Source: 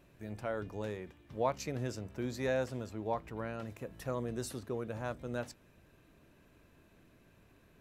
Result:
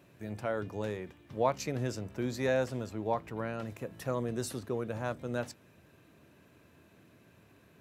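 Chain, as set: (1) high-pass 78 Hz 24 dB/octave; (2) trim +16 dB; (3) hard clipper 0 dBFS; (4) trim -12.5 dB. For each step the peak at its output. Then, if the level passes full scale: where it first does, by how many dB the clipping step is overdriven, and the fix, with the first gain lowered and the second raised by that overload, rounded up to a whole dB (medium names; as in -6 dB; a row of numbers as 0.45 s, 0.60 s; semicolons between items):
-18.5 dBFS, -2.5 dBFS, -2.5 dBFS, -15.0 dBFS; nothing clips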